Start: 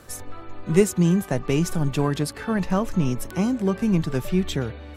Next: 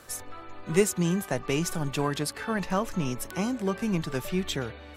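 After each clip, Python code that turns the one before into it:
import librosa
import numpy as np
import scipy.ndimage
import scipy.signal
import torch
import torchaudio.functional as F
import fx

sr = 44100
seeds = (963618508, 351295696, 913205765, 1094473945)

y = fx.low_shelf(x, sr, hz=420.0, db=-9.0)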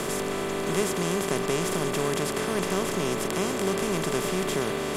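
y = fx.bin_compress(x, sr, power=0.2)
y = y * 10.0 ** (-8.0 / 20.0)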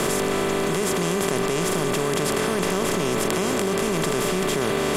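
y = fx.env_flatten(x, sr, amount_pct=100)
y = y * 10.0 ** (-1.0 / 20.0)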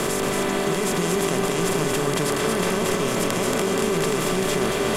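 y = x + 10.0 ** (-3.5 / 20.0) * np.pad(x, (int(229 * sr / 1000.0), 0))[:len(x)]
y = y * 10.0 ** (-1.0 / 20.0)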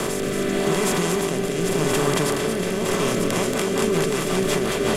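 y = fx.rotary_switch(x, sr, hz=0.85, then_hz=5.5, switch_at_s=2.77)
y = y * 10.0 ** (2.5 / 20.0)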